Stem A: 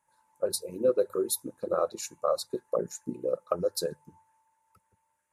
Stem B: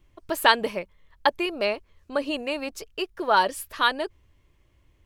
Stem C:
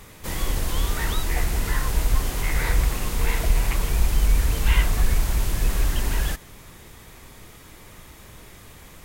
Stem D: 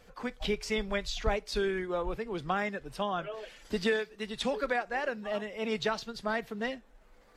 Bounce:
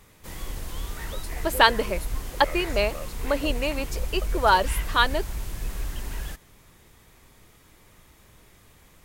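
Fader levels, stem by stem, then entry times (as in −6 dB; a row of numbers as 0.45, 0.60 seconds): −12.5 dB, +1.0 dB, −9.5 dB, muted; 0.70 s, 1.15 s, 0.00 s, muted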